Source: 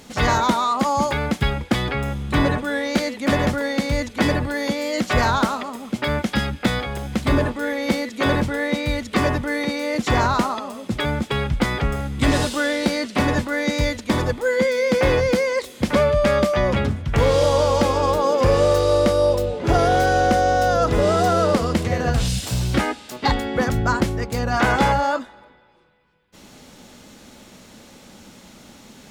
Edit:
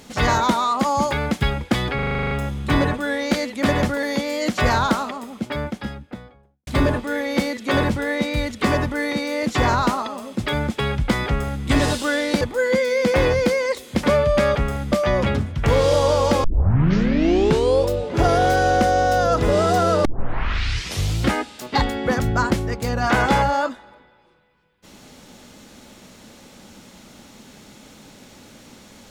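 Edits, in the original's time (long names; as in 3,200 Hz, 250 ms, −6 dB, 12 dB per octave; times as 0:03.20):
0:01.95: stutter 0.04 s, 10 plays
0:03.67–0:04.55: remove
0:05.41–0:07.19: fade out and dull
0:11.79–0:12.16: duplicate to 0:16.42
0:12.93–0:14.28: remove
0:17.94: tape start 1.46 s
0:21.55: tape start 1.24 s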